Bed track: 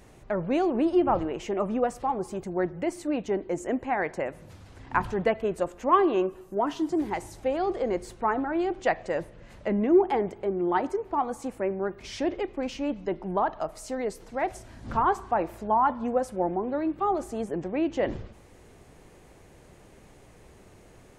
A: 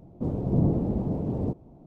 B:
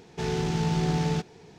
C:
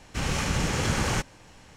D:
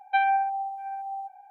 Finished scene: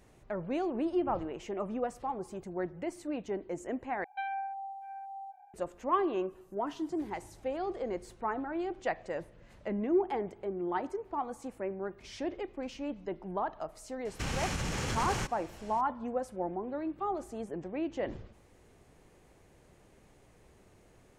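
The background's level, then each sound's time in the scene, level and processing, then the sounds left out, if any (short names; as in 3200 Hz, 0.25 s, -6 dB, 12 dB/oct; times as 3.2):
bed track -8 dB
4.04 replace with D -7 dB + compressor 1.5:1, threshold -38 dBFS
14.05 add C -1 dB + compressor, threshold -29 dBFS
not used: A, B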